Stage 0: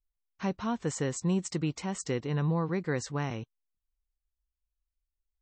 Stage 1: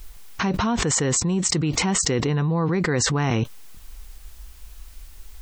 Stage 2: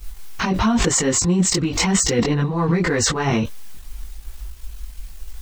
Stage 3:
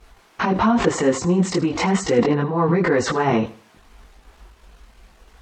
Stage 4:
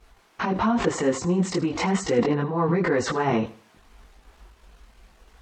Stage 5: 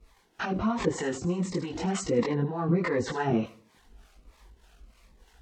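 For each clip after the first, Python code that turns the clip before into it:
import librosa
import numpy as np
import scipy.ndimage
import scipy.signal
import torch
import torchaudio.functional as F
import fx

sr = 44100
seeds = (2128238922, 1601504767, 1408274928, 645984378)

y1 = fx.notch(x, sr, hz=570.0, q=12.0)
y1 = fx.env_flatten(y1, sr, amount_pct=100)
y1 = F.gain(torch.from_numpy(y1), 4.0).numpy()
y2 = fx.leveller(y1, sr, passes=1)
y2 = fx.chorus_voices(y2, sr, voices=6, hz=0.95, base_ms=20, depth_ms=3.0, mix_pct=55)
y2 = F.gain(torch.from_numpy(y2), 3.0).numpy()
y3 = fx.bandpass_q(y2, sr, hz=610.0, q=0.56)
y3 = fx.echo_feedback(y3, sr, ms=79, feedback_pct=31, wet_db=-17.0)
y3 = F.gain(torch.from_numpy(y3), 4.5).numpy()
y4 = fx.rider(y3, sr, range_db=10, speed_s=2.0)
y4 = F.gain(torch.from_numpy(y4), -4.0).numpy()
y5 = fx.harmonic_tremolo(y4, sr, hz=3.3, depth_pct=70, crossover_hz=570.0)
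y5 = fx.notch_cascade(y5, sr, direction='falling', hz=1.4)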